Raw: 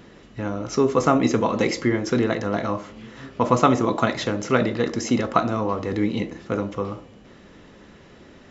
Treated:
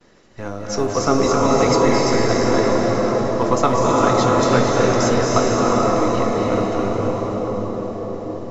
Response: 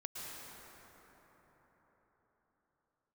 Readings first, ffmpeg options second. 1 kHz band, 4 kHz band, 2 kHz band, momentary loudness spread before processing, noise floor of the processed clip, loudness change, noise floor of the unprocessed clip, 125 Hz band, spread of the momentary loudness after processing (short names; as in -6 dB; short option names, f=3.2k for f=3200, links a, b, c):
+6.0 dB, +6.5 dB, +3.5 dB, 13 LU, -31 dBFS, +5.0 dB, -48 dBFS, +5.5 dB, 11 LU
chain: -filter_complex "[0:a]aemphasis=mode=reproduction:type=50kf,agate=range=-33dB:threshold=-43dB:ratio=3:detection=peak,acrossover=split=400[a][b];[a]aeval=exprs='max(val(0),0)':c=same[c];[c][b]amix=inputs=2:normalize=0,aexciter=amount=3.9:drive=5:freq=4.5k,asplit=2[d][e];[e]asoftclip=type=tanh:threshold=-17dB,volume=-7.5dB[f];[d][f]amix=inputs=2:normalize=0[g];[1:a]atrim=start_sample=2205,asetrate=22491,aresample=44100[h];[g][h]afir=irnorm=-1:irlink=0"